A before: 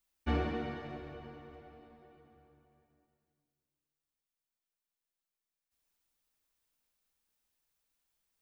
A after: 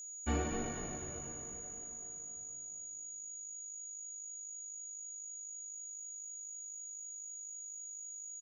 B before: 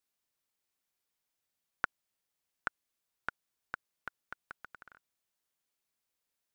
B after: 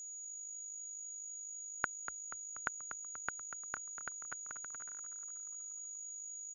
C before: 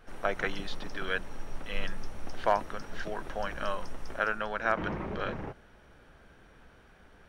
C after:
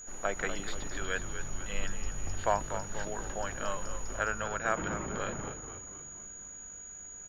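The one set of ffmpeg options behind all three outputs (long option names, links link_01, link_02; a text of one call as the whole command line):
ffmpeg -i in.wav -filter_complex "[0:a]acrossover=split=3300[link_01][link_02];[link_02]aeval=exprs='clip(val(0),-1,0.00708)':channel_layout=same[link_03];[link_01][link_03]amix=inputs=2:normalize=0,aeval=exprs='val(0)+0.00794*sin(2*PI*6800*n/s)':channel_layout=same,asplit=7[link_04][link_05][link_06][link_07][link_08][link_09][link_10];[link_05]adelay=241,afreqshift=-52,volume=-10dB[link_11];[link_06]adelay=482,afreqshift=-104,volume=-15.2dB[link_12];[link_07]adelay=723,afreqshift=-156,volume=-20.4dB[link_13];[link_08]adelay=964,afreqshift=-208,volume=-25.6dB[link_14];[link_09]adelay=1205,afreqshift=-260,volume=-30.8dB[link_15];[link_10]adelay=1446,afreqshift=-312,volume=-36dB[link_16];[link_04][link_11][link_12][link_13][link_14][link_15][link_16]amix=inputs=7:normalize=0,volume=-2.5dB" out.wav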